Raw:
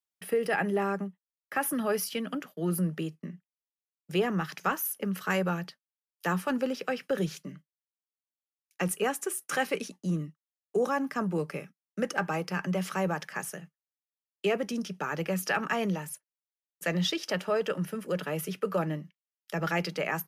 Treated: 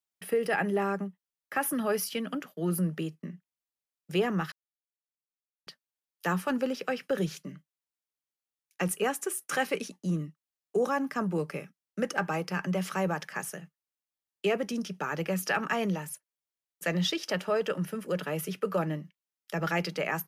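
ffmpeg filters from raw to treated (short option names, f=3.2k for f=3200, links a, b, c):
-filter_complex "[0:a]asplit=3[a][b][c];[a]atrim=end=4.52,asetpts=PTS-STARTPTS,afade=t=out:st=4.516:d=0.004:c=hsin[d];[b]atrim=start=4.52:end=5.67,asetpts=PTS-STARTPTS,volume=0[e];[c]atrim=start=5.67,asetpts=PTS-STARTPTS,afade=t=in:d=0.004:c=hsin[f];[d][e][f]concat=n=3:v=0:a=1"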